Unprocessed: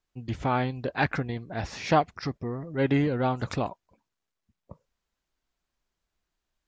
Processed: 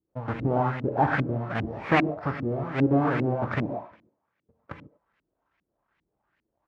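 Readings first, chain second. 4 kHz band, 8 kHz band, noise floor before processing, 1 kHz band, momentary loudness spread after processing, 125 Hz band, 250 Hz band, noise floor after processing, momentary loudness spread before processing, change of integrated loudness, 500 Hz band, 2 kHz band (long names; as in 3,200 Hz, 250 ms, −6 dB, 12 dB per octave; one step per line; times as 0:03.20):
−4.0 dB, can't be measured, −85 dBFS, +1.5 dB, 14 LU, +2.0 dB, +3.0 dB, −82 dBFS, 10 LU, +2.0 dB, +1.5 dB, +2.5 dB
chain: each half-wave held at its own peak
high-pass filter 79 Hz
in parallel at +1.5 dB: downward compressor, threshold −29 dBFS, peak gain reduction 15.5 dB
on the sum: far-end echo of a speakerphone 100 ms, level −14 dB
reverb whose tail is shaped and stops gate 160 ms flat, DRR 4 dB
auto-filter low-pass saw up 2.5 Hz 250–2,400 Hz
one half of a high-frequency compander encoder only
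level −7.5 dB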